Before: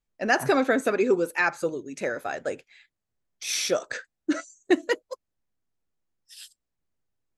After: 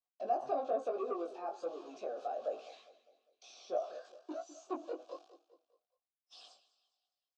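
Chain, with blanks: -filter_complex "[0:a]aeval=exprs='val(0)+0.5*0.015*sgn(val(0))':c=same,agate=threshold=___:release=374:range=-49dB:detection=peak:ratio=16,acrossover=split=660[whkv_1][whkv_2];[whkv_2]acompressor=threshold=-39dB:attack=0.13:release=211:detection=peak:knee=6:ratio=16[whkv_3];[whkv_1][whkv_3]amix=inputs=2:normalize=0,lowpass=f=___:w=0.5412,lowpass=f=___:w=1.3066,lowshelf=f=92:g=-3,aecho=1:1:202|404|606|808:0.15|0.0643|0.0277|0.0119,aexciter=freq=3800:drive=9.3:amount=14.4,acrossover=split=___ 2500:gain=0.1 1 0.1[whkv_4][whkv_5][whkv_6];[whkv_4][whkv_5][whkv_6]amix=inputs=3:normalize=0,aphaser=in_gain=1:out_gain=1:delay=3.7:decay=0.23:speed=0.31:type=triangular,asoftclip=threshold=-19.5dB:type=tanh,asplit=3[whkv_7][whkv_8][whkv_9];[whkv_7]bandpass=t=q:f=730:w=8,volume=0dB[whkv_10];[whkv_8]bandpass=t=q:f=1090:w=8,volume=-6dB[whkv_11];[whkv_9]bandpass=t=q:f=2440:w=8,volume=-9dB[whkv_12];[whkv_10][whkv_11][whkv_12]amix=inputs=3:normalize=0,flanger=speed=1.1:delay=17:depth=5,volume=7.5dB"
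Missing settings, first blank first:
-40dB, 6200, 6200, 210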